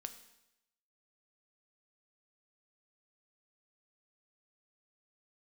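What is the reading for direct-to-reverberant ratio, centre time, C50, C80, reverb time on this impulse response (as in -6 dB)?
8.0 dB, 10 ms, 12.0 dB, 14.0 dB, 0.85 s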